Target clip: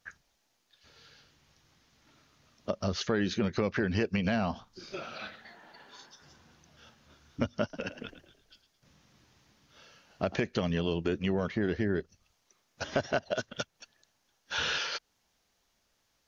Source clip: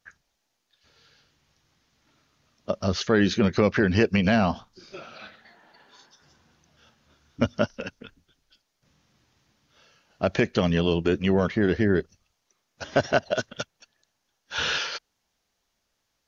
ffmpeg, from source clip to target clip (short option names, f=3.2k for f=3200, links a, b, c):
-filter_complex "[0:a]acompressor=threshold=-36dB:ratio=2,asettb=1/sr,asplit=3[a][b][c];[a]atrim=end=7.624[d];[b]atrim=start=7.62:end=10.35,asetpts=PTS-STARTPTS,afade=t=in:d=0.004:c=qsin,afade=t=out:st=2.726:d=0.004:c=qsin,asplit=5[e][f][g][h][i];[f]adelay=109,afreqshift=57,volume=-12dB[j];[g]adelay=218,afreqshift=114,volume=-20.6dB[k];[h]adelay=327,afreqshift=171,volume=-29.3dB[l];[i]adelay=436,afreqshift=228,volume=-37.9dB[m];[e][j][k][l][m]amix=inputs=5:normalize=0,atrim=end_sample=120393[n];[c]atrim=start=10.346[o];[d][n]acrossfade=d=0.004:c1=hsin:c2=qsin[p];[p][o]acrossfade=d=0.004:c1=qsin:c2=hsin,volume=2dB"